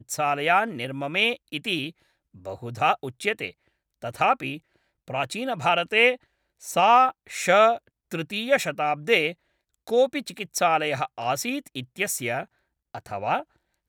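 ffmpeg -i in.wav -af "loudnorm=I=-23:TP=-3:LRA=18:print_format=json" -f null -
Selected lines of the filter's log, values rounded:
"input_i" : "-24.5",
"input_tp" : "-4.9",
"input_lra" : "7.7",
"input_thresh" : "-35.4",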